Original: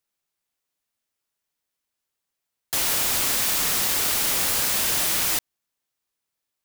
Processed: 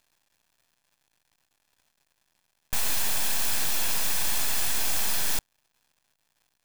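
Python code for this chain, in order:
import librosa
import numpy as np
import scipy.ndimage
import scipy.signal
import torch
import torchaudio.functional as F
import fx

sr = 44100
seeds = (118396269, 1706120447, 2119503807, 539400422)

y = fx.dmg_crackle(x, sr, seeds[0], per_s=280.0, level_db=-53.0)
y = np.abs(y)
y = y + 0.31 * np.pad(y, (int(1.2 * sr / 1000.0), 0))[:len(y)]
y = y * librosa.db_to_amplitude(-1.5)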